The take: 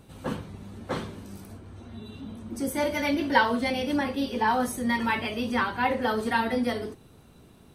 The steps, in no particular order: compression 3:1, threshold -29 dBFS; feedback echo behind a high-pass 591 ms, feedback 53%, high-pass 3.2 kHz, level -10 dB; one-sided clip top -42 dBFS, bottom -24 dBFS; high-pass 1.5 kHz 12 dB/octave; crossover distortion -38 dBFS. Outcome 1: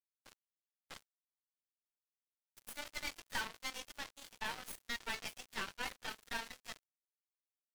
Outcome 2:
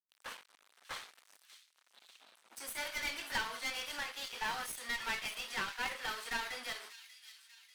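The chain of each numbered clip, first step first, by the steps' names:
high-pass > one-sided clip > compression > feedback echo behind a high-pass > crossover distortion; crossover distortion > high-pass > compression > one-sided clip > feedback echo behind a high-pass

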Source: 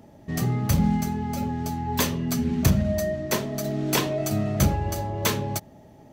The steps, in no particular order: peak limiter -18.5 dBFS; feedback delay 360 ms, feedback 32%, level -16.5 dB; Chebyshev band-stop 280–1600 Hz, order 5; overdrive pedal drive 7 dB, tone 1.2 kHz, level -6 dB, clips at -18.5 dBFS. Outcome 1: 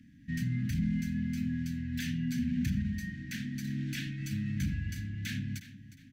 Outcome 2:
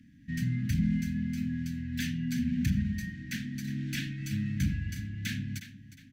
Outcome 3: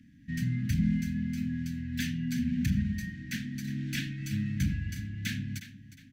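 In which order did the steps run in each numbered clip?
peak limiter > feedback delay > overdrive pedal > Chebyshev band-stop; feedback delay > overdrive pedal > peak limiter > Chebyshev band-stop; feedback delay > overdrive pedal > Chebyshev band-stop > peak limiter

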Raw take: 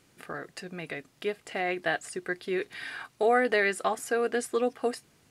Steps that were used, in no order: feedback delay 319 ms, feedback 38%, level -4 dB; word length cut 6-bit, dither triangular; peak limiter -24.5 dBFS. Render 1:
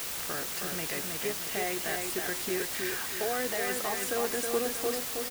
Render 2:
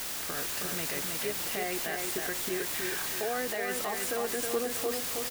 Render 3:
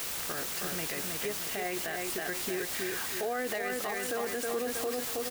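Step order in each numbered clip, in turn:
peak limiter > feedback delay > word length cut; word length cut > peak limiter > feedback delay; feedback delay > word length cut > peak limiter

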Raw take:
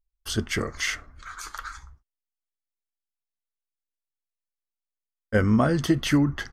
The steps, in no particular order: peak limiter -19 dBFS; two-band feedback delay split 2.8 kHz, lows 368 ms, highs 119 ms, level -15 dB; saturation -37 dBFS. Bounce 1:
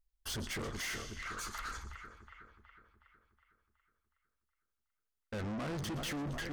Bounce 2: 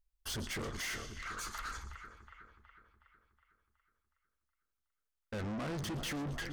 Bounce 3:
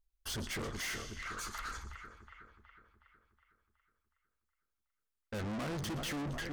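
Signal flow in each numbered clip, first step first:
two-band feedback delay > peak limiter > saturation; peak limiter > two-band feedback delay > saturation; two-band feedback delay > saturation > peak limiter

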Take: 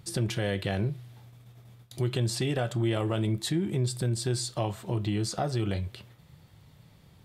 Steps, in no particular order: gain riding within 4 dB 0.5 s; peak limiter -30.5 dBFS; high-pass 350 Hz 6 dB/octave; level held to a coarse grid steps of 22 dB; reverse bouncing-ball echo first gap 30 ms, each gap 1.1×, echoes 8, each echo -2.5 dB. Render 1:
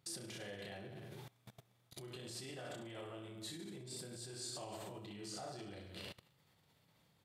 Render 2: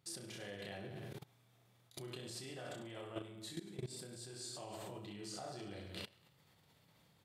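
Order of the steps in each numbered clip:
reverse bouncing-ball echo > peak limiter > gain riding > level held to a coarse grid > high-pass; reverse bouncing-ball echo > level held to a coarse grid > high-pass > peak limiter > gain riding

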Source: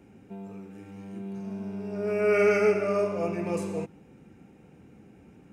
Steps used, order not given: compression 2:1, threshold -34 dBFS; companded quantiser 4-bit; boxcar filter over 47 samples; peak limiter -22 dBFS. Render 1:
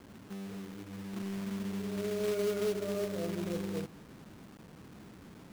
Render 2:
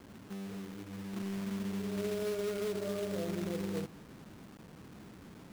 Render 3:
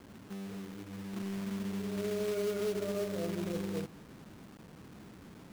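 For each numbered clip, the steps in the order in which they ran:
boxcar filter > companded quantiser > compression > peak limiter; peak limiter > boxcar filter > companded quantiser > compression; boxcar filter > companded quantiser > peak limiter > compression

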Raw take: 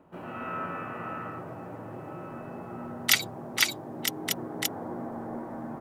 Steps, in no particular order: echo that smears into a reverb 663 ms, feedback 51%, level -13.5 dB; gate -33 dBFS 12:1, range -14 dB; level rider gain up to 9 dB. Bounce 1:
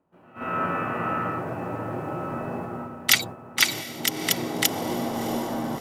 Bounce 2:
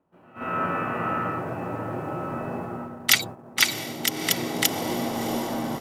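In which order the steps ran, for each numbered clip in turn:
level rider > gate > echo that smears into a reverb; echo that smears into a reverb > level rider > gate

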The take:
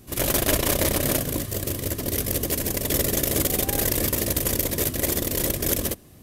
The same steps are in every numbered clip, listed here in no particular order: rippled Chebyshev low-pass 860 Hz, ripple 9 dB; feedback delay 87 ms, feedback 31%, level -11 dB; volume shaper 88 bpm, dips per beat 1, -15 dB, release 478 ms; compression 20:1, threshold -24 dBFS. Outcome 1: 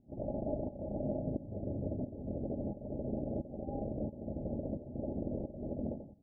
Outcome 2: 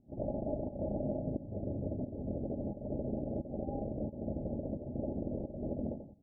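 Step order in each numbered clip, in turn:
feedback delay > compression > volume shaper > rippled Chebyshev low-pass; feedback delay > volume shaper > compression > rippled Chebyshev low-pass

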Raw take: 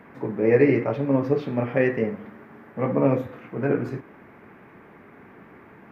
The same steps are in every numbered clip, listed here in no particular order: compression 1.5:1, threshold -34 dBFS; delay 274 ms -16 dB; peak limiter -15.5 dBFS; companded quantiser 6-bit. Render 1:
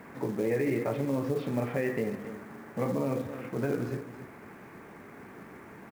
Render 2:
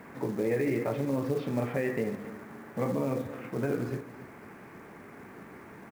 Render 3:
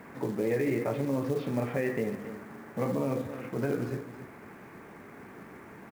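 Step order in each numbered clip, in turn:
peak limiter > delay > companded quantiser > compression; companded quantiser > peak limiter > compression > delay; peak limiter > delay > compression > companded quantiser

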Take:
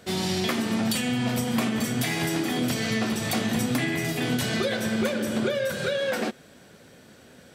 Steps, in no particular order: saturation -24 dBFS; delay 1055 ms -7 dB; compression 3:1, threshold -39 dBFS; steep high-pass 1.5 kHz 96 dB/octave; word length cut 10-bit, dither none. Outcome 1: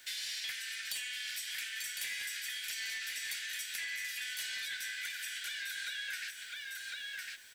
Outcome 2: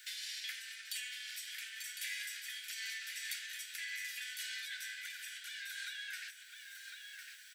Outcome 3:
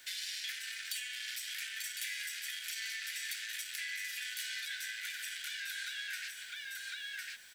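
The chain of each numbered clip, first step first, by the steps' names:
steep high-pass > word length cut > saturation > delay > compression; word length cut > compression > steep high-pass > saturation > delay; delay > saturation > steep high-pass > word length cut > compression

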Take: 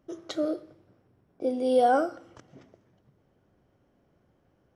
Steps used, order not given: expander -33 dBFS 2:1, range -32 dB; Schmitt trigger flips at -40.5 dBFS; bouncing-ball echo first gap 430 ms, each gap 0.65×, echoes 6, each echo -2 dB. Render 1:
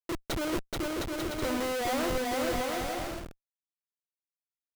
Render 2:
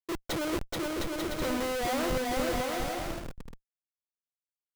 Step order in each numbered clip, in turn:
expander > Schmitt trigger > bouncing-ball echo; Schmitt trigger > expander > bouncing-ball echo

